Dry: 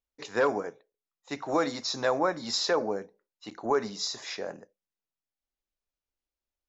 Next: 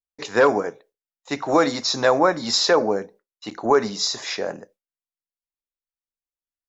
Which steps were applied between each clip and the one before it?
noise gate with hold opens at −56 dBFS
level +9 dB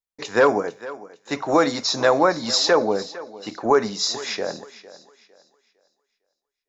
feedback echo with a high-pass in the loop 455 ms, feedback 31%, high-pass 200 Hz, level −17 dB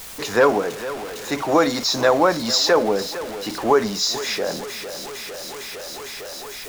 converter with a step at zero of −27.5 dBFS

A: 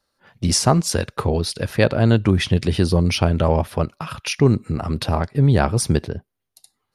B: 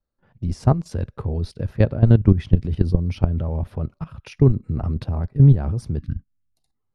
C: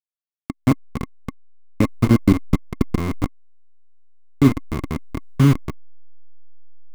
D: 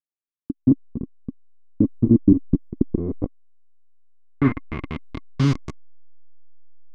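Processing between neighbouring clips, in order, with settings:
output level in coarse steps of 14 dB; gain on a spectral selection 0:05.99–0:06.54, 320–1,100 Hz −27 dB; spectral tilt −4 dB per octave; level −6 dB
hold until the input has moved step −14 dBFS; hollow resonant body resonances 270/1,100/2,100 Hz, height 15 dB, ringing for 30 ms; level −6 dB
low-pass filter sweep 310 Hz → 6,700 Hz, 0:02.77–0:05.72; level −5 dB

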